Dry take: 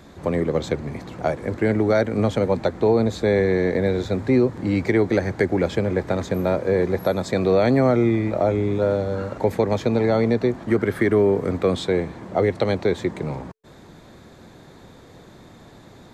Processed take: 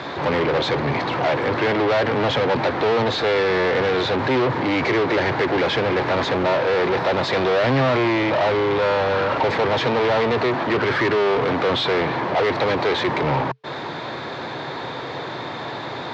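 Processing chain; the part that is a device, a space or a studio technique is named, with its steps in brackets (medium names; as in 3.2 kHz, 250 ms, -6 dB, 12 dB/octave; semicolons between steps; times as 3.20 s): overdrive pedal into a guitar cabinet (overdrive pedal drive 34 dB, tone 6.1 kHz, clips at -7.5 dBFS; cabinet simulation 75–4500 Hz, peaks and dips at 130 Hz +8 dB, 200 Hz -8 dB, 940 Hz +4 dB); trim -5.5 dB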